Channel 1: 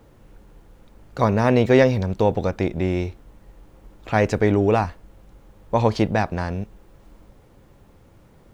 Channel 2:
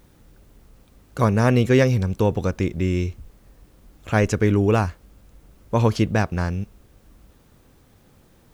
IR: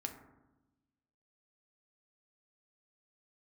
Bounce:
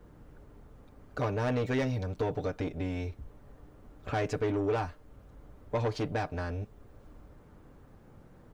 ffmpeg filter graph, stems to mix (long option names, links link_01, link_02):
-filter_complex "[0:a]aecho=1:1:6.7:0.84,asoftclip=type=tanh:threshold=-13.5dB,volume=-11.5dB,asplit=2[link_01][link_02];[1:a]lowpass=frequency=1700:width=0.5412,lowpass=frequency=1700:width=1.3066,acompressor=threshold=-23dB:ratio=6,volume=-1,adelay=5.4,volume=-1dB[link_03];[link_02]apad=whole_len=376841[link_04];[link_03][link_04]sidechaincompress=threshold=-41dB:ratio=8:attack=16:release=390[link_05];[link_01][link_05]amix=inputs=2:normalize=0"